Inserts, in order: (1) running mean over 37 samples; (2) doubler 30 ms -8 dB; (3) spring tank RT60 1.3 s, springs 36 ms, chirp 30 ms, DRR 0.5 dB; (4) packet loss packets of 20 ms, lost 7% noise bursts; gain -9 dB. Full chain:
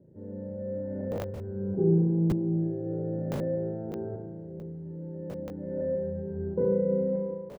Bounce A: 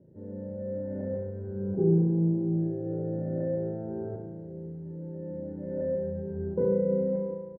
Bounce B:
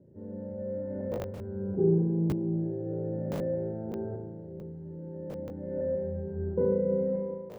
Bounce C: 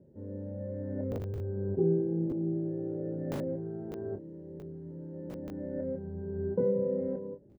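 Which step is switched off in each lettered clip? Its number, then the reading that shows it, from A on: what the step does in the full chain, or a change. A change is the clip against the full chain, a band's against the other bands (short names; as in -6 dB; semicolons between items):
4, 1 kHz band -2.5 dB; 2, 125 Hz band -1.5 dB; 3, loudness change -4.0 LU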